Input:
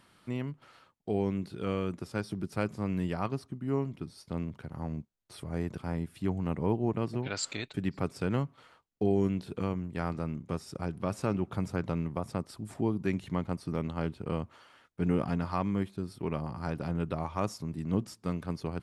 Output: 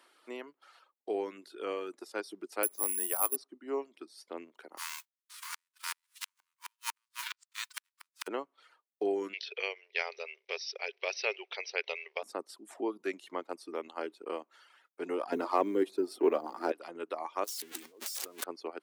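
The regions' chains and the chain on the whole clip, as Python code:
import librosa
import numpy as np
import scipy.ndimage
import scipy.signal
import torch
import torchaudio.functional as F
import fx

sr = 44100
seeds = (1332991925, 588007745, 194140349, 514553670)

y = fx.chain(x, sr, fx.highpass(hz=310.0, slope=6),
    fx.resample_bad(factor=4, down='filtered', up='zero_stuff'), at=(2.63, 3.36))
y = fx.envelope_flatten(y, sr, power=0.3, at=(4.77, 8.26), fade=0.02)
y = fx.brickwall_highpass(y, sr, low_hz=900.0, at=(4.77, 8.26), fade=0.02)
y = fx.gate_flip(y, sr, shuts_db=-21.0, range_db=-40, at=(4.77, 8.26), fade=0.02)
y = fx.chain(y, sr, fx.brickwall_bandpass(low_hz=380.0, high_hz=6100.0),
    fx.high_shelf_res(hz=1700.0, db=10.5, q=3.0), at=(9.33, 12.23))
y = fx.chain(y, sr, fx.law_mismatch(coded='mu'),
    fx.peak_eq(hz=310.0, db=11.5, octaves=2.3), at=(15.32, 16.72))
y = fx.chain(y, sr, fx.crossing_spikes(level_db=-22.5),
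    fx.high_shelf(hz=6500.0, db=-8.0),
    fx.over_compress(threshold_db=-39.0, ratio=-1.0), at=(17.44, 18.44))
y = fx.dereverb_blind(y, sr, rt60_s=0.79)
y = scipy.signal.sosfilt(scipy.signal.butter(6, 320.0, 'highpass', fs=sr, output='sos'), y)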